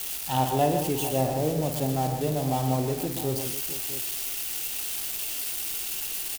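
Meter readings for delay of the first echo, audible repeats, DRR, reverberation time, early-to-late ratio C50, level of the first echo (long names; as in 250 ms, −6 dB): 53 ms, 5, no reverb audible, no reverb audible, no reverb audible, −8.5 dB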